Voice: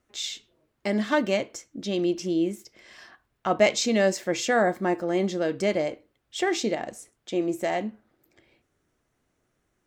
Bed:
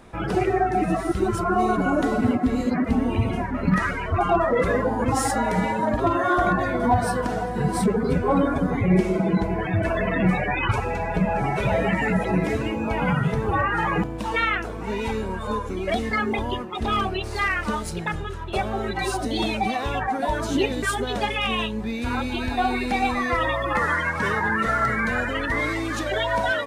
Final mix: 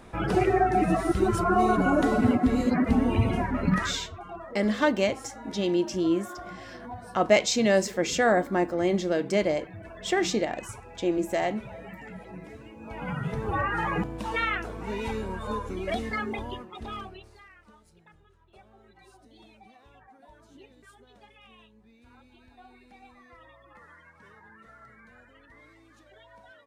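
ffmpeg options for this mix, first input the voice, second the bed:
ffmpeg -i stem1.wav -i stem2.wav -filter_complex "[0:a]adelay=3700,volume=0dB[link_01];[1:a]volume=14.5dB,afade=type=out:start_time=3.54:duration=0.61:silence=0.105925,afade=type=in:start_time=12.75:duration=0.87:silence=0.16788,afade=type=out:start_time=15.83:duration=1.6:silence=0.0562341[link_02];[link_01][link_02]amix=inputs=2:normalize=0" out.wav

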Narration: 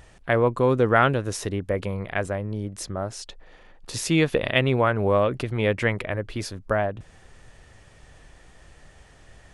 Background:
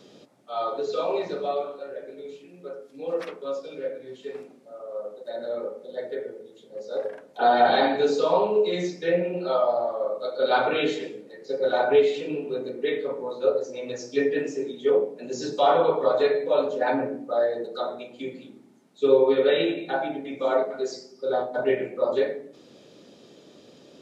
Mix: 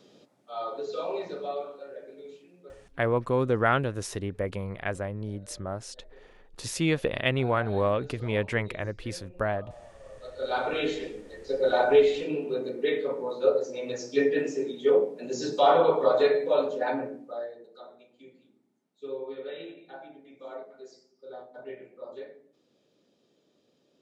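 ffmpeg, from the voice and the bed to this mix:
ffmpeg -i stem1.wav -i stem2.wav -filter_complex "[0:a]adelay=2700,volume=-5dB[link_01];[1:a]volume=17.5dB,afade=type=out:start_time=2.34:duration=0.7:silence=0.125893,afade=type=in:start_time=10.03:duration=1.26:silence=0.0668344,afade=type=out:start_time=16.35:duration=1.22:silence=0.133352[link_02];[link_01][link_02]amix=inputs=2:normalize=0" out.wav

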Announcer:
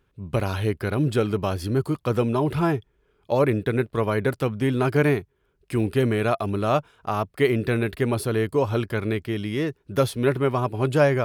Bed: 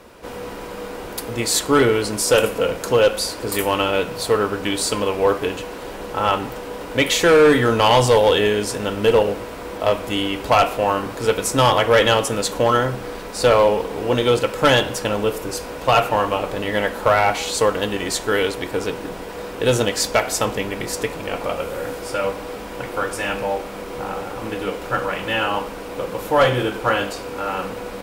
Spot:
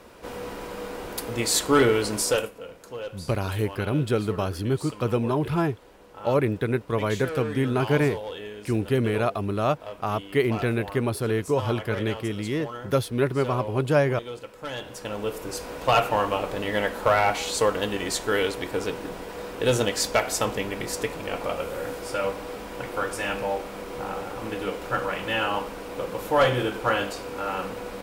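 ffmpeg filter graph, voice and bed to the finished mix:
ffmpeg -i stem1.wav -i stem2.wav -filter_complex "[0:a]adelay=2950,volume=-2dB[link_01];[1:a]volume=12dB,afade=type=out:start_time=2.19:duration=0.32:silence=0.149624,afade=type=in:start_time=14.72:duration=1.01:silence=0.16788[link_02];[link_01][link_02]amix=inputs=2:normalize=0" out.wav

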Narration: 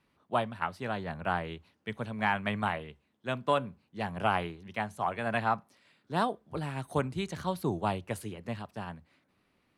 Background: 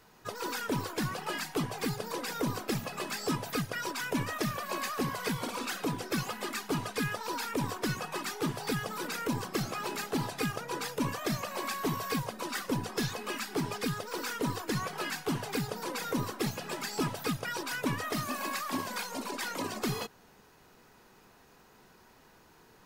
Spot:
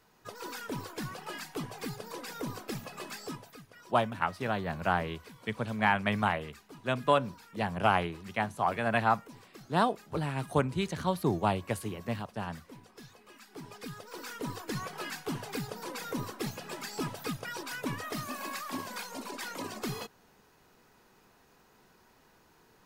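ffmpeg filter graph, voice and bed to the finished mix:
ffmpeg -i stem1.wav -i stem2.wav -filter_complex "[0:a]adelay=3600,volume=2.5dB[link_01];[1:a]volume=10dB,afade=type=out:start_time=3.11:duration=0.46:silence=0.211349,afade=type=in:start_time=13.34:duration=1.43:silence=0.16788[link_02];[link_01][link_02]amix=inputs=2:normalize=0" out.wav

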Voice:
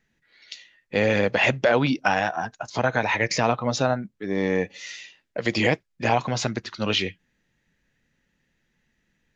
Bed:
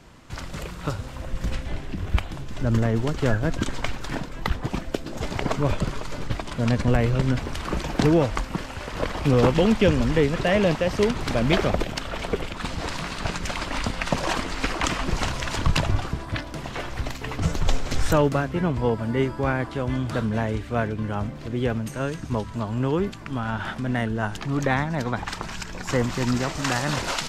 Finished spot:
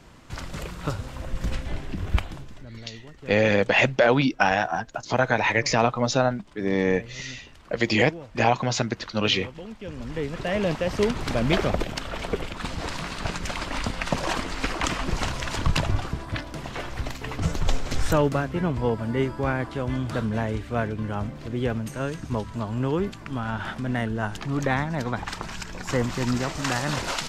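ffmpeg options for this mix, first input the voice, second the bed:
ffmpeg -i stem1.wav -i stem2.wav -filter_complex "[0:a]adelay=2350,volume=1dB[link_01];[1:a]volume=18dB,afade=type=out:start_time=2.19:duration=0.47:silence=0.105925,afade=type=in:start_time=9.83:duration=1.19:silence=0.11885[link_02];[link_01][link_02]amix=inputs=2:normalize=0" out.wav

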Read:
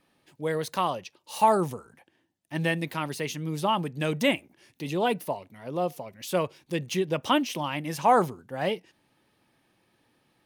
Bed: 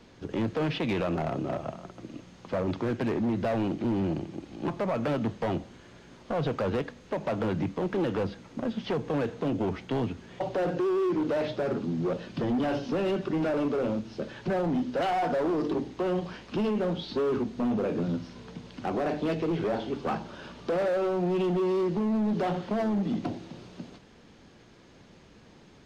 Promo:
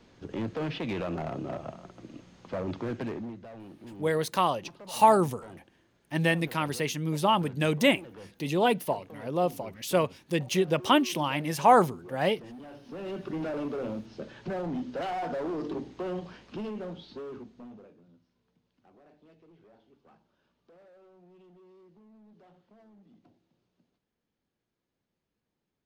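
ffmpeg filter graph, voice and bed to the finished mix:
ffmpeg -i stem1.wav -i stem2.wav -filter_complex "[0:a]adelay=3600,volume=1.5dB[link_01];[1:a]volume=8.5dB,afade=type=out:start_time=2.98:duration=0.42:silence=0.199526,afade=type=in:start_time=12.8:duration=0.5:silence=0.237137,afade=type=out:start_time=16.06:duration=1.91:silence=0.0562341[link_02];[link_01][link_02]amix=inputs=2:normalize=0" out.wav

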